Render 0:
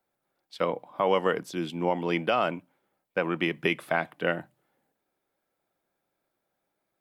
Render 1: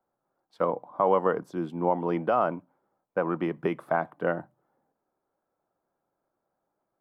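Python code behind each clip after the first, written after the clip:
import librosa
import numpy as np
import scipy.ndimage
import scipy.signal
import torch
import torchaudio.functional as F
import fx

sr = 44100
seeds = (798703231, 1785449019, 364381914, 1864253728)

y = fx.high_shelf_res(x, sr, hz=1700.0, db=-13.5, q=1.5)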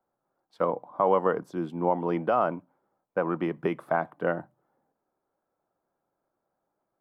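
y = x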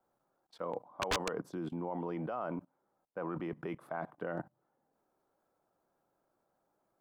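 y = fx.level_steps(x, sr, step_db=21)
y = 10.0 ** (-29.5 / 20.0) * (np.abs((y / 10.0 ** (-29.5 / 20.0) + 3.0) % 4.0 - 2.0) - 1.0)
y = y * librosa.db_to_amplitude(4.5)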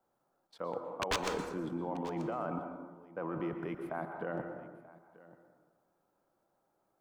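y = x + 10.0 ** (-20.0 / 20.0) * np.pad(x, (int(935 * sr / 1000.0), 0))[:len(x)]
y = fx.rev_plate(y, sr, seeds[0], rt60_s=1.2, hf_ratio=0.45, predelay_ms=105, drr_db=5.5)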